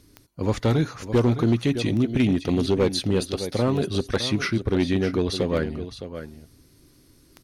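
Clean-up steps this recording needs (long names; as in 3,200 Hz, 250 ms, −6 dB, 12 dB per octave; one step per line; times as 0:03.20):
clipped peaks rebuilt −13.5 dBFS
click removal
echo removal 612 ms −11.5 dB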